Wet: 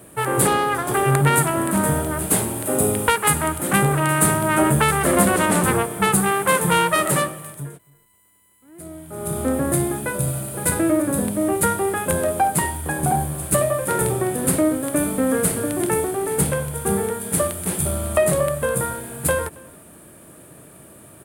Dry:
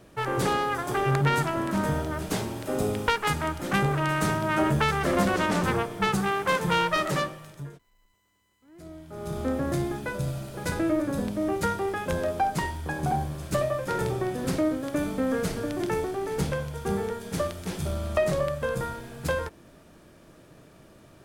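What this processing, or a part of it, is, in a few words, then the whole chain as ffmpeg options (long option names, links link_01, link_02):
budget condenser microphone: -filter_complex "[0:a]asettb=1/sr,asplit=3[link_01][link_02][link_03];[link_01]atrim=end=0.474[link_04];[link_02]atrim=start=0.47:end=0.94,asetpts=PTS-STARTPTS,afade=type=in:duration=0.004:curve=qsin,afade=type=out:start_time=0.466:duration=0.004:curve=qsin,highshelf=frequency=6700:width_type=q:width=1.5:gain=-6[link_05];[link_03]atrim=start=0.936[link_06];[link_04][link_05]acrossfade=duration=0.004:curve1=hsin:curve2=qsin[link_07];[link_07][link_06]acrossfade=duration=0.004:curve1=qsin:curve2=hsin,highpass=70,highshelf=frequency=7300:width_type=q:width=3:gain=10,asplit=2[link_08][link_09];[link_09]adelay=274.1,volume=-24dB,highshelf=frequency=4000:gain=-6.17[link_10];[link_08][link_10]amix=inputs=2:normalize=0,volume=6.5dB"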